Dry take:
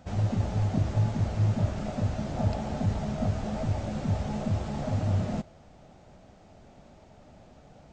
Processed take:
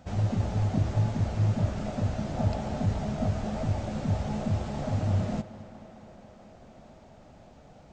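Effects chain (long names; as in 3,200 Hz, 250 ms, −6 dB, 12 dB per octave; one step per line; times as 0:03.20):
tape delay 215 ms, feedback 89%, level −16 dB, low-pass 4,500 Hz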